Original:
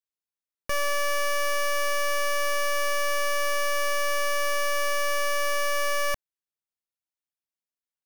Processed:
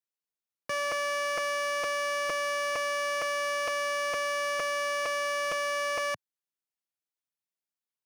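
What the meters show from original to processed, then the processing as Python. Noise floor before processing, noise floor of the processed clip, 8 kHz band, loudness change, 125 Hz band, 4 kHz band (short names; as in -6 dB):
under -85 dBFS, under -85 dBFS, -6.0 dB, -3.5 dB, n/a, -3.5 dB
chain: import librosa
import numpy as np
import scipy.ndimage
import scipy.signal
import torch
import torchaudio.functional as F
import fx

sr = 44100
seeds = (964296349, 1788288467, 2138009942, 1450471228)

y = scipy.signal.sosfilt(scipy.signal.butter(4, 120.0, 'highpass', fs=sr, output='sos'), x)
y = fx.buffer_crackle(y, sr, first_s=0.45, period_s=0.46, block=256, kind='repeat')
y = fx.slew_limit(y, sr, full_power_hz=300.0)
y = y * 10.0 ** (-2.5 / 20.0)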